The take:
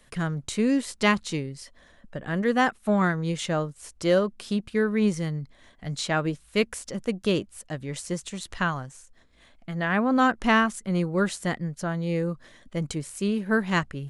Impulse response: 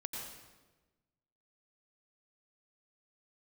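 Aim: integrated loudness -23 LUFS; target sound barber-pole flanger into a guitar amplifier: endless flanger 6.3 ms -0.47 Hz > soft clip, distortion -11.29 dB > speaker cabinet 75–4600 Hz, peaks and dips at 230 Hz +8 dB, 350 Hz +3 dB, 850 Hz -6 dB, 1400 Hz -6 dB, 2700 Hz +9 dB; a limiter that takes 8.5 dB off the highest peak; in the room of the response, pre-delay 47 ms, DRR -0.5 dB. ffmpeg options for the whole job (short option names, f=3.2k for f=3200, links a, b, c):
-filter_complex "[0:a]alimiter=limit=-17dB:level=0:latency=1,asplit=2[a][b];[1:a]atrim=start_sample=2205,adelay=47[c];[b][c]afir=irnorm=-1:irlink=0,volume=0.5dB[d];[a][d]amix=inputs=2:normalize=0,asplit=2[e][f];[f]adelay=6.3,afreqshift=-0.47[g];[e][g]amix=inputs=2:normalize=1,asoftclip=threshold=-24.5dB,highpass=75,equalizer=f=230:t=q:w=4:g=8,equalizer=f=350:t=q:w=4:g=3,equalizer=f=850:t=q:w=4:g=-6,equalizer=f=1.4k:t=q:w=4:g=-6,equalizer=f=2.7k:t=q:w=4:g=9,lowpass=f=4.6k:w=0.5412,lowpass=f=4.6k:w=1.3066,volume=6dB"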